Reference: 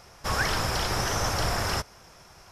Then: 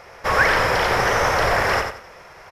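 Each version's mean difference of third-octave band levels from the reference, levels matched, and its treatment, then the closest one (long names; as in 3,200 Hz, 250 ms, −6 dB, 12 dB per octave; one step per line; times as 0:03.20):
5.5 dB: graphic EQ with 10 bands 500 Hz +11 dB, 1,000 Hz +5 dB, 2,000 Hz +12 dB, 8,000 Hz −4 dB
repeating echo 89 ms, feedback 27%, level −6 dB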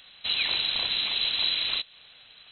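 18.5 dB: dynamic equaliser 2,600 Hz, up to −4 dB, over −43 dBFS, Q 0.71
voice inversion scrambler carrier 4,000 Hz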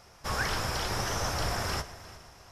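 2.0 dB: on a send: echo machine with several playback heads 118 ms, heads first and third, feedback 52%, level −18.5 dB
on the sum: flanger 0.98 Hz, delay 8.7 ms, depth 9.5 ms, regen −65%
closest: third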